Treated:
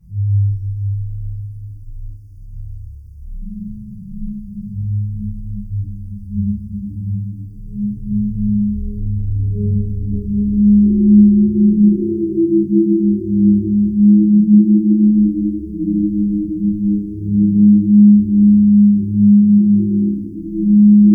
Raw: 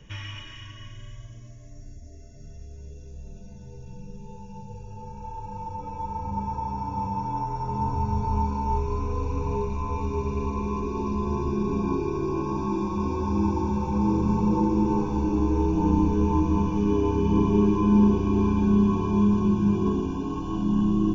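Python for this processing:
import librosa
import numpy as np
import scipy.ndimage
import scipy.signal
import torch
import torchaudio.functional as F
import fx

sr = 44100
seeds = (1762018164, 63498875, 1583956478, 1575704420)

p1 = fx.spec_expand(x, sr, power=2.5)
p2 = fx.band_shelf(p1, sr, hz=1800.0, db=14.0, octaves=1.7)
p3 = p2 + 0.61 * np.pad(p2, (int(6.3 * sr / 1000.0), 0))[:len(p2)]
p4 = fx.rider(p3, sr, range_db=10, speed_s=2.0)
p5 = fx.quant_dither(p4, sr, seeds[0], bits=12, dither='none')
p6 = fx.brickwall_bandstop(p5, sr, low_hz=410.0, high_hz=4600.0)
p7 = fx.stiff_resonator(p6, sr, f0_hz=100.0, decay_s=0.24, stiffness=0.03)
p8 = p7 + fx.echo_thinned(p7, sr, ms=143, feedback_pct=74, hz=640.0, wet_db=-5.5, dry=0)
p9 = fx.rev_fdn(p8, sr, rt60_s=1.1, lf_ratio=1.35, hf_ratio=0.9, size_ms=97.0, drr_db=-9.5)
y = p9 * 10.0 ** (3.0 / 20.0)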